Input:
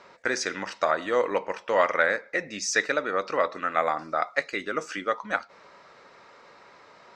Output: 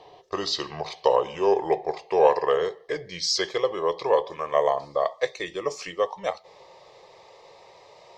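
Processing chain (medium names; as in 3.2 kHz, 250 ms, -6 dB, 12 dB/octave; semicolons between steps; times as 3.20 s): gliding tape speed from 77% -> 98%; static phaser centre 600 Hz, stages 4; trim +5.5 dB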